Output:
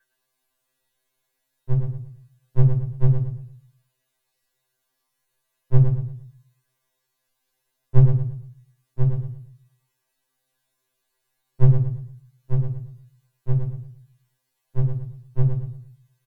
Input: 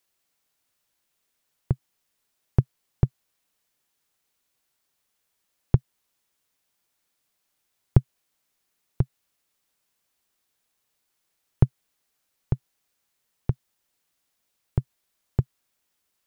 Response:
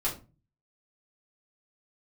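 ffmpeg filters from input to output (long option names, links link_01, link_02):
-filter_complex "[0:a]aeval=exprs='val(0)+0.00112*sin(2*PI*1600*n/s)':channel_layout=same,aecho=1:1:113|226|339|452:0.447|0.138|0.0429|0.0133[link_01];[1:a]atrim=start_sample=2205,asetrate=39690,aresample=44100[link_02];[link_01][link_02]afir=irnorm=-1:irlink=0,afftfilt=real='re*2.45*eq(mod(b,6),0)':imag='im*2.45*eq(mod(b,6),0)':win_size=2048:overlap=0.75,volume=-5dB"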